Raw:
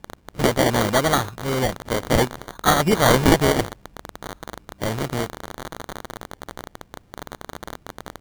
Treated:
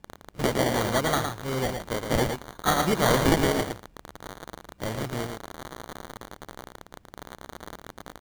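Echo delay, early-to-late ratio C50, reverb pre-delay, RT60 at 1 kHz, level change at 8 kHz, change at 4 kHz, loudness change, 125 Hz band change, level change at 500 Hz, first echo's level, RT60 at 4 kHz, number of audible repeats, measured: 112 ms, no reverb, no reverb, no reverb, -5.5 dB, -5.5 dB, -5.5 dB, -5.5 dB, -5.5 dB, -6.0 dB, no reverb, 1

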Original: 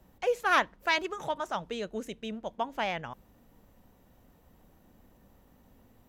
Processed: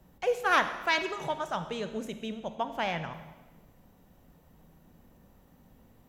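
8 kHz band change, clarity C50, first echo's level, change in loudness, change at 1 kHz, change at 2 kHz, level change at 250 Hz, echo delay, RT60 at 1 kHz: +0.5 dB, 10.0 dB, no echo, +0.5 dB, +0.5 dB, +0.5 dB, +1.5 dB, no echo, 1.2 s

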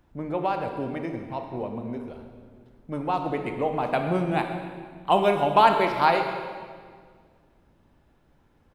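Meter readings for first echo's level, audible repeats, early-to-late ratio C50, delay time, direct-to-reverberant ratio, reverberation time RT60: -16.0 dB, 1, 6.0 dB, 128 ms, 4.5 dB, 1.9 s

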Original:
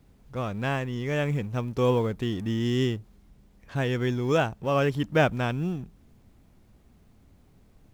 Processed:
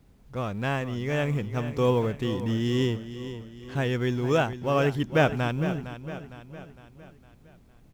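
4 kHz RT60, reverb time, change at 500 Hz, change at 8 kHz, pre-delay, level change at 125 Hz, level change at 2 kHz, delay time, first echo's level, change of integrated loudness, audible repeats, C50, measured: no reverb, no reverb, +0.5 dB, no reading, no reverb, +0.5 dB, +0.5 dB, 458 ms, -12.0 dB, 0.0 dB, 4, no reverb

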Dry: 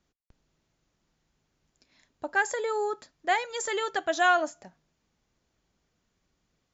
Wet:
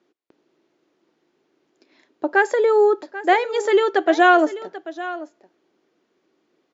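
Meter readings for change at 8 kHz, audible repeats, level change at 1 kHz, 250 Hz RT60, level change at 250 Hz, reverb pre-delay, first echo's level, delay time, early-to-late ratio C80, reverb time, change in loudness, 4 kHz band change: no reading, 1, +8.5 dB, no reverb, +17.5 dB, no reverb, -15.5 dB, 788 ms, no reverb, no reverb, +9.5 dB, +4.5 dB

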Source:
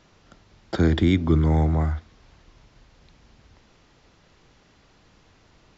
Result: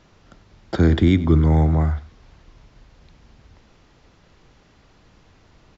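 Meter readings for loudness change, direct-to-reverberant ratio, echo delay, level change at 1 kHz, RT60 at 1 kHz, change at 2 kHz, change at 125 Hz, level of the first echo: +3.5 dB, no reverb, 95 ms, +2.0 dB, no reverb, +1.5 dB, +4.0 dB, -18.0 dB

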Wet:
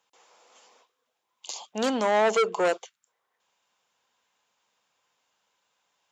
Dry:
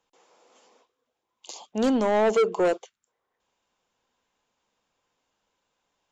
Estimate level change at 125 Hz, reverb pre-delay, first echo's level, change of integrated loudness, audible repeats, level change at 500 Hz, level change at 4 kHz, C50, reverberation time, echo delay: no reading, no reverb, no echo, -1.5 dB, no echo, -2.0 dB, +4.5 dB, no reverb, no reverb, no echo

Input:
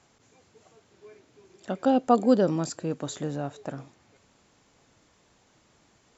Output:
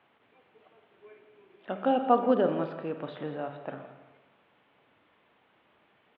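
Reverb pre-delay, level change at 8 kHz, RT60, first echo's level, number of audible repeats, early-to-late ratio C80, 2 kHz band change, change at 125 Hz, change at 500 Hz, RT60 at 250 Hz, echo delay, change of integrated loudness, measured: 31 ms, no reading, 1.1 s, -14.0 dB, 2, 9.0 dB, +0.5 dB, -8.5 dB, -1.5 dB, 1.0 s, 168 ms, -3.0 dB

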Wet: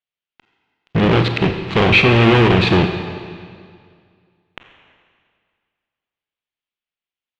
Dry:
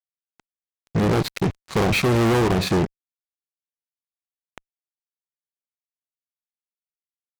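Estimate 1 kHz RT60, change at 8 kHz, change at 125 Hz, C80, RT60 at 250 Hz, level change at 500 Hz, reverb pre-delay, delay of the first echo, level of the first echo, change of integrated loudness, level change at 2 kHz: 2.1 s, no reading, +7.0 dB, 8.0 dB, 2.1 s, +5.5 dB, 23 ms, no echo, no echo, +7.0 dB, +11.0 dB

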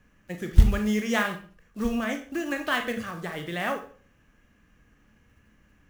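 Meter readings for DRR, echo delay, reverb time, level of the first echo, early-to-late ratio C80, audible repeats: 5.0 dB, no echo, 0.40 s, no echo, 14.5 dB, no echo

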